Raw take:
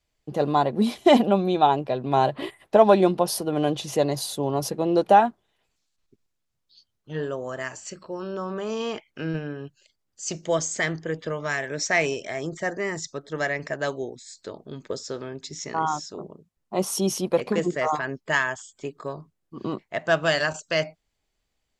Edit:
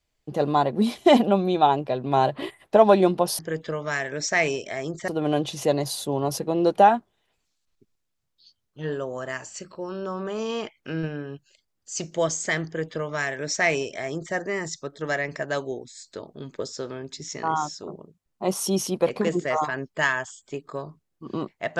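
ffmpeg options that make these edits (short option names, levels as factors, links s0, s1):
-filter_complex "[0:a]asplit=3[s0][s1][s2];[s0]atrim=end=3.392[s3];[s1]atrim=start=10.968:end=12.662[s4];[s2]atrim=start=3.388[s5];[s3][s4]acrossfade=d=0.004:c1=hsin:c2=hsin[s6];[s6][s5]acrossfade=d=0.004:c1=hsin:c2=hsin"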